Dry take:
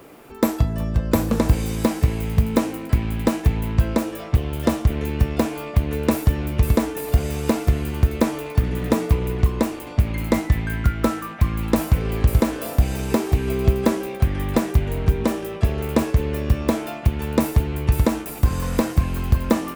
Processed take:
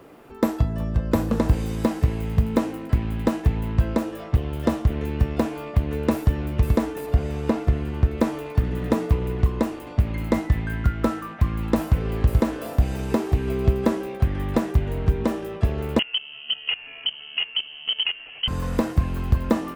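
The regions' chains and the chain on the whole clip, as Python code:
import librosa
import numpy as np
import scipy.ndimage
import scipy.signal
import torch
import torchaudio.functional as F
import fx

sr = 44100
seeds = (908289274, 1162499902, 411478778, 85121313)

y = fx.chain(x, sr, fx.lowpass(hz=3800.0, slope=6),
    fx.quant_float(bits=8), at=(7.06, 8.18))
y = fx.chain(y, sr, fx.peak_eq(hz=290.0, db=5.5, octaves=2.3),
    fx.level_steps(step_db=18),
    fx.freq_invert(carrier_hz=3100), at=(15.99, 18.48))
y = fx.high_shelf(y, sr, hz=4400.0, db=-9.0)
y = fx.notch(y, sr, hz=2300.0, q=18.0)
y = F.gain(torch.from_numpy(y), -2.0).numpy()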